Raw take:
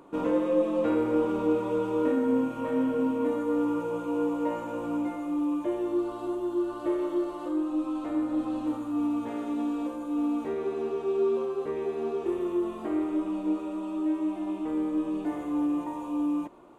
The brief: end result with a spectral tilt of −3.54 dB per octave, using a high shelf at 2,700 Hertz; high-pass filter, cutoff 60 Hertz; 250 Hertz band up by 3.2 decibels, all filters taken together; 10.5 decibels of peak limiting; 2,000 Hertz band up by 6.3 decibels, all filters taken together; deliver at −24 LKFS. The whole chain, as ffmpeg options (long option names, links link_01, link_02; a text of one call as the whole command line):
ffmpeg -i in.wav -af "highpass=60,equalizer=frequency=250:width_type=o:gain=4,equalizer=frequency=2000:width_type=o:gain=6.5,highshelf=frequency=2700:gain=5.5,volume=5dB,alimiter=limit=-16.5dB:level=0:latency=1" out.wav